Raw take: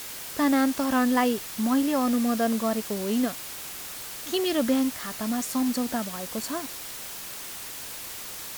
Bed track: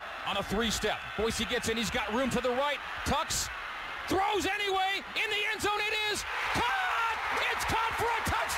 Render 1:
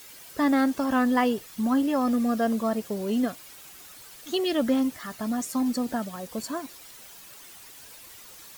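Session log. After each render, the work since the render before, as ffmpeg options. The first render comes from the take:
-af "afftdn=nr=11:nf=-38"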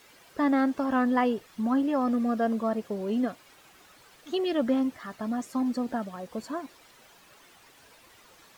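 -af "lowpass=f=1800:p=1,lowshelf=f=190:g=-5.5"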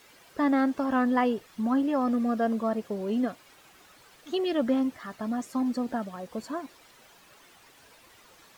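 -af anull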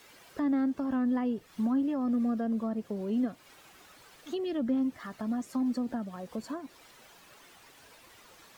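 -filter_complex "[0:a]acrossover=split=310[s0][s1];[s1]acompressor=threshold=0.01:ratio=4[s2];[s0][s2]amix=inputs=2:normalize=0"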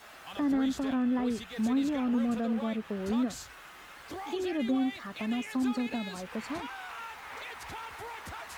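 -filter_complex "[1:a]volume=0.237[s0];[0:a][s0]amix=inputs=2:normalize=0"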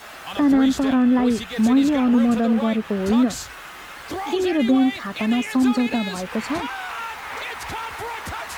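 -af "volume=3.76"

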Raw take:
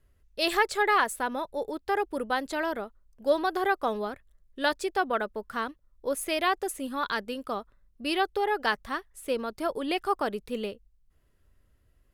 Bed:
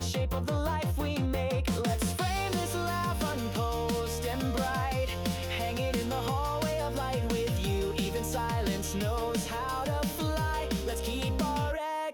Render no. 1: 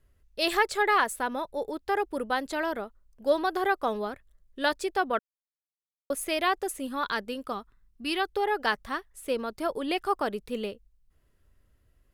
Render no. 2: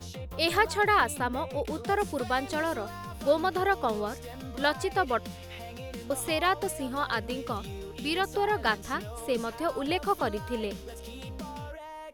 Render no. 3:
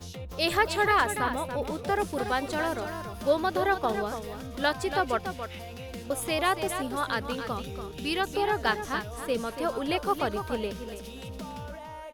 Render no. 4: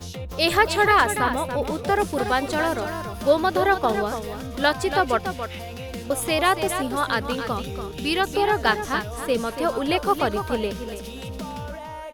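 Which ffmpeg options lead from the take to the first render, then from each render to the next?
-filter_complex "[0:a]asettb=1/sr,asplit=3[s0][s1][s2];[s0]atrim=end=7.524[s3];[s1]atrim=start=7.52:end=8.29,asetpts=PTS-STARTPTS,afade=t=in:d=0.004:c=qsin,afade=t=out:st=0.766:d=0.004:c=qsin,equalizer=f=560:w=3.2:g=-15[s4];[s2]atrim=start=8.286[s5];[s3][s4]acrossfade=d=0.004:c1=hsin:c2=qsin[s6];[s6][s5]acrossfade=d=0.004:c1=qsin:c2=hsin,asplit=3[s7][s8][s9];[s7]atrim=end=5.19,asetpts=PTS-STARTPTS,afade=t=out:st=5.186:d=0.004:c=hsin[s10];[s8]atrim=start=5.19:end=6.1,asetpts=PTS-STARTPTS,volume=0[s11];[s9]atrim=start=6.1,asetpts=PTS-STARTPTS,afade=t=in:d=0.004:c=hsin[s12];[s10][s11][s12]concat=n=3:v=0:a=1"
-filter_complex "[1:a]volume=0.335[s0];[0:a][s0]amix=inputs=2:normalize=0"
-af "aecho=1:1:285:0.355"
-af "volume=2"

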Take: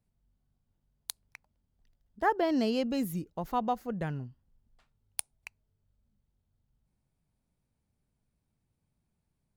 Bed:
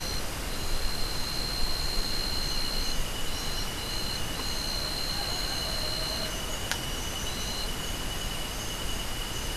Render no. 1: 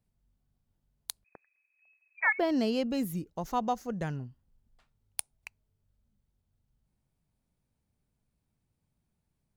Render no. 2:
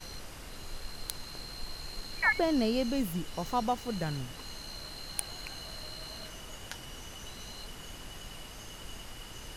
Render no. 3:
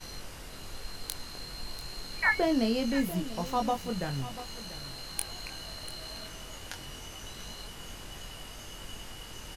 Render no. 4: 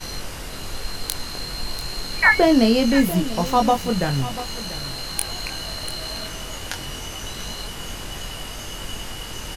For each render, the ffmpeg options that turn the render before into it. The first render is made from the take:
-filter_complex "[0:a]asettb=1/sr,asplit=3[s0][s1][s2];[s0]atrim=end=1.244[s3];[s1]atrim=start=1.24:end=2.39,asetpts=PTS-STARTPTS,afade=t=in:d=0.004:c=qsin,afade=t=out:st=1.146:d=0.004:c=qsin,lowpass=f=2200:t=q:w=0.5098,lowpass=f=2200:t=q:w=0.6013,lowpass=f=2200:t=q:w=0.9,lowpass=f=2200:t=q:w=2.563,afreqshift=-2600[s4];[s2]atrim=start=2.386[s5];[s3][s4]acrossfade=d=0.004:c1=hsin:c2=qsin[s6];[s6][s5]acrossfade=d=0.004:c1=qsin:c2=hsin,asettb=1/sr,asplit=3[s7][s8][s9];[s7]atrim=end=3.364[s10];[s8]atrim=start=3.36:end=4.16,asetpts=PTS-STARTPTS,afade=t=in:d=0.004:c=qsin,afade=t=out:st=0.796:d=0.004:c=qsin,equalizer=f=6100:t=o:w=0.6:g=13[s11];[s9]atrim=start=4.156[s12];[s10][s11]acrossfade=d=0.004:c1=hsin:c2=qsin[s13];[s13][s12]acrossfade=d=0.004:c1=qsin:c2=hsin"
-filter_complex "[1:a]volume=0.251[s0];[0:a][s0]amix=inputs=2:normalize=0"
-filter_complex "[0:a]asplit=2[s0][s1];[s1]adelay=22,volume=0.531[s2];[s0][s2]amix=inputs=2:normalize=0,aecho=1:1:691:0.188"
-af "volume=3.76,alimiter=limit=0.794:level=0:latency=1"

